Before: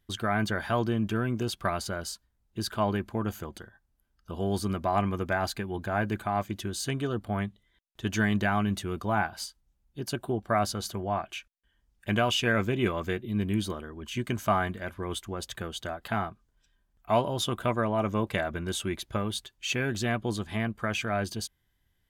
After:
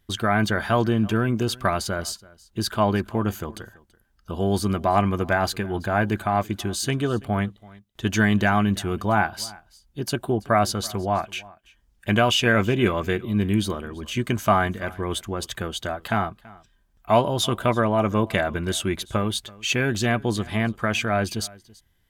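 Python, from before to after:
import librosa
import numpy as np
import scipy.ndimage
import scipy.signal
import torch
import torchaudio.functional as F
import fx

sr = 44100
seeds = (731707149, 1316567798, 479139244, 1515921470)

y = x + 10.0 ** (-22.5 / 20.0) * np.pad(x, (int(332 * sr / 1000.0), 0))[:len(x)]
y = y * librosa.db_to_amplitude(6.5)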